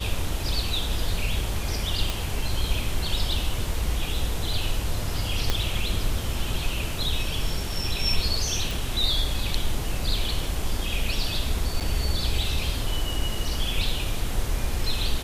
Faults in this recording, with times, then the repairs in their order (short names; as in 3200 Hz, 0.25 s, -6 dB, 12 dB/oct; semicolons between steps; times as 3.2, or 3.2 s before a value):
2.1 pop
5.5 pop -8 dBFS
8.71 pop
11.8–11.81 gap 7.1 ms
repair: de-click; interpolate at 11.8, 7.1 ms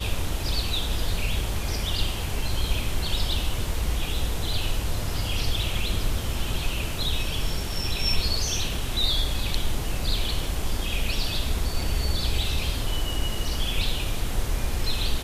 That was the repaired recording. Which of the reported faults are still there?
5.5 pop